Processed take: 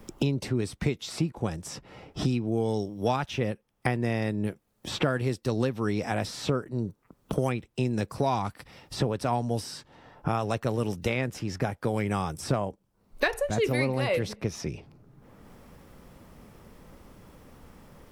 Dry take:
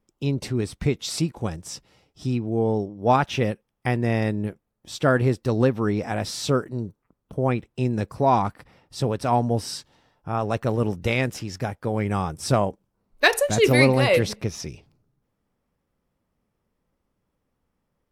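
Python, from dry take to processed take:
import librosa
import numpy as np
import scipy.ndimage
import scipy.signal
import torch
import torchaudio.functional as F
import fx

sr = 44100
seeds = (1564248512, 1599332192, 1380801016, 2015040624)

y = fx.band_squash(x, sr, depth_pct=100)
y = F.gain(torch.from_numpy(y), -5.5).numpy()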